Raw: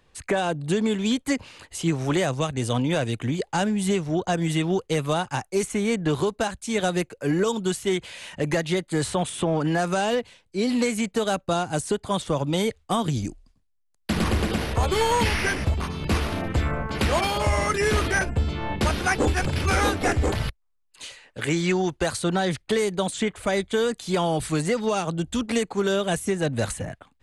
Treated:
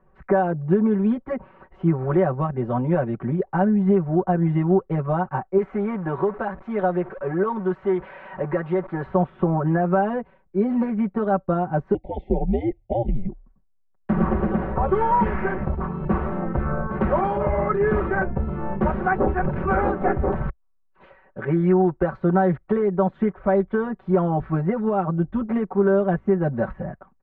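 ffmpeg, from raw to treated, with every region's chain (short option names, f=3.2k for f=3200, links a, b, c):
-filter_complex "[0:a]asettb=1/sr,asplit=3[a][b][c];[a]atrim=end=5.584[d];[b]atrim=start=5.58:end=9.06,asetpts=PTS-STARTPTS,afade=t=in:d=0.004:c=qsin,afade=t=out:st=3.476:d=0.004:c=qsin,aeval=exprs='val(0)+0.5*0.0299*sgn(val(0))':c=same,lowshelf=f=300:g=-10.5[e];[c]atrim=start=9.056[f];[d][e]acrossfade=d=0.004:c1=hsin:c2=qsin[g];[g][f]acrossfade=d=0.004:c1=qsin:c2=hsin,asettb=1/sr,asplit=3[h][i][j];[h]atrim=end=11.944[k];[i]atrim=start=11.94:end=13.29,asetpts=PTS-STARTPTS,afade=t=in:d=0.004:c=qsin,afade=t=out:st=1.346:d=0.004:c=qsin,equalizer=f=5.6k:t=o:w=0.32:g=-4,afreqshift=-110,asuperstop=centerf=1300:order=20:qfactor=1.2[l];[j]atrim=start=13.286[m];[k][l]acrossfade=d=0.004:c1=hsin:c2=qsin[n];[n][m]acrossfade=d=0.004:c1=qsin:c2=hsin,lowpass=f=1.4k:w=0.5412,lowpass=f=1.4k:w=1.3066,aecho=1:1:5.3:0.98"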